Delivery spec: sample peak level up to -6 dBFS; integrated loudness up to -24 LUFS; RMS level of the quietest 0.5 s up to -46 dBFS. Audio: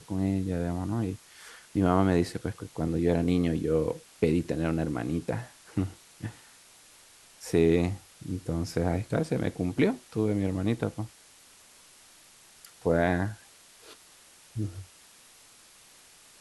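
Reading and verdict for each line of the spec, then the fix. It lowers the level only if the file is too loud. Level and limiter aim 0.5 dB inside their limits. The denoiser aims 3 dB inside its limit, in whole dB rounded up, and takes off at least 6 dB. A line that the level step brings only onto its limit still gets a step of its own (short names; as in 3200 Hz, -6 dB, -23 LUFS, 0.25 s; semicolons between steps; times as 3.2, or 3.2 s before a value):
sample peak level -9.0 dBFS: OK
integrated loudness -29.0 LUFS: OK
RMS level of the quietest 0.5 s -56 dBFS: OK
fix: none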